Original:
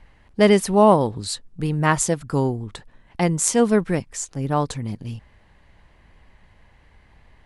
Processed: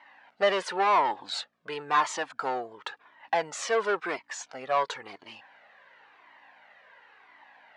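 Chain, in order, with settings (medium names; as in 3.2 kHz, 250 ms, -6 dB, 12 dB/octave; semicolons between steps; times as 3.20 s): hum 60 Hz, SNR 30 dB; overdrive pedal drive 24 dB, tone 1.7 kHz, clips at -1 dBFS; band-pass 700–5300 Hz; speed mistake 25 fps video run at 24 fps; Shepard-style flanger falling 0.95 Hz; trim -4.5 dB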